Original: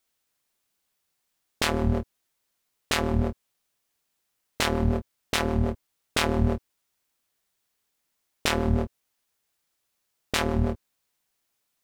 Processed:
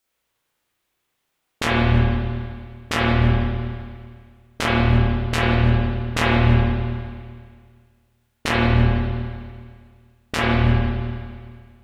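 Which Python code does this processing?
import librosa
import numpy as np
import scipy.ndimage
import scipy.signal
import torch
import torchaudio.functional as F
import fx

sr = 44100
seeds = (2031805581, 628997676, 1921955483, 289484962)

y = fx.formant_shift(x, sr, semitones=-5)
y = fx.rev_spring(y, sr, rt60_s=1.9, pass_ms=(34, 50), chirp_ms=50, drr_db=-7.0)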